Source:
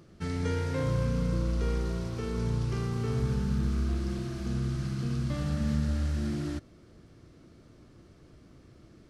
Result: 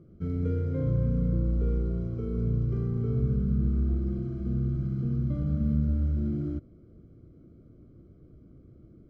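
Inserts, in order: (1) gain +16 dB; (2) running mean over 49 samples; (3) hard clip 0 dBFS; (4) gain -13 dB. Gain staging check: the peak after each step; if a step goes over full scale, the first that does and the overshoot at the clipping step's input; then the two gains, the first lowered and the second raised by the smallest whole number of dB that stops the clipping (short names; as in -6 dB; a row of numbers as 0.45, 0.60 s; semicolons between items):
-1.5, -2.0, -2.0, -15.0 dBFS; no overload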